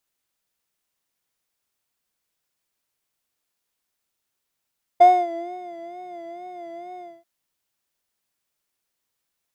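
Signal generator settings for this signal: synth patch with vibrato F5, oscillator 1 square, interval 0 st, oscillator 2 level -13 dB, sub -14 dB, noise -23 dB, filter bandpass, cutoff 150 Hz, Q 2.1, filter envelope 2 oct, filter decay 0.72 s, filter sustain 20%, attack 14 ms, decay 0.25 s, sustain -14.5 dB, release 0.24 s, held 2.00 s, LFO 2.2 Hz, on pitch 70 cents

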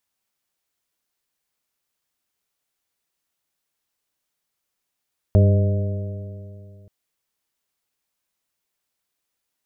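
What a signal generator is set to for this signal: stretched partials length 1.53 s, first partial 97.9 Hz, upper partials -9.5/-20/-13.5/-17/-13 dB, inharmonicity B 0.0029, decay 2.58 s, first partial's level -10 dB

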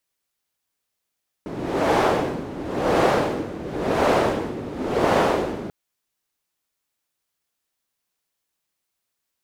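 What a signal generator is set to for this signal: wind-like swept noise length 4.24 s, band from 290 Hz, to 600 Hz, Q 1.2, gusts 4, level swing 14 dB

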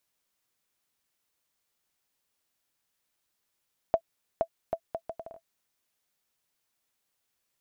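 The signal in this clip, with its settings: bouncing ball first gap 0.47 s, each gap 0.68, 663 Hz, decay 70 ms -12 dBFS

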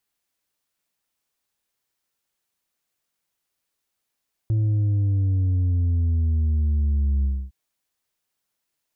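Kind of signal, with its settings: sub drop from 110 Hz, over 3.01 s, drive 4 dB, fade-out 0.27 s, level -18.5 dB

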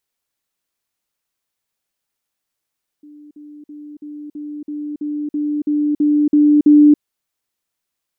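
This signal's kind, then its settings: level ladder 296 Hz -38 dBFS, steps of 3 dB, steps 12, 0.28 s 0.05 s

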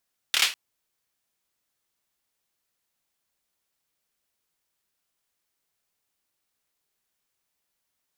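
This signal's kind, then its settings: hand clap length 0.20 s, apart 27 ms, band 2800 Hz, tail 0.28 s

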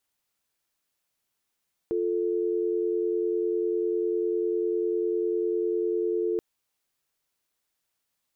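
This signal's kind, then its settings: call progress tone dial tone, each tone -26.5 dBFS 4.48 s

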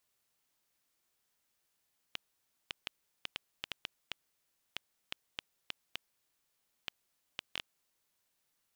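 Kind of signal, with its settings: random clicks 3.3/s -18.5 dBFS 5.73 s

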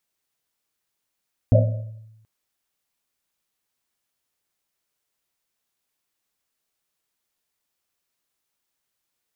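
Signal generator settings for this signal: Risset drum length 0.73 s, pitch 110 Hz, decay 1.03 s, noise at 580 Hz, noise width 130 Hz, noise 35%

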